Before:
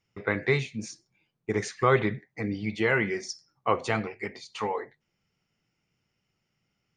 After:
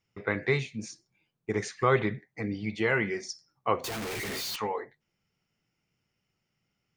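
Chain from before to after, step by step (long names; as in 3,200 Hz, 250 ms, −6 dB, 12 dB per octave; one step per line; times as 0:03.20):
0:03.84–0:04.56: sign of each sample alone
level −2 dB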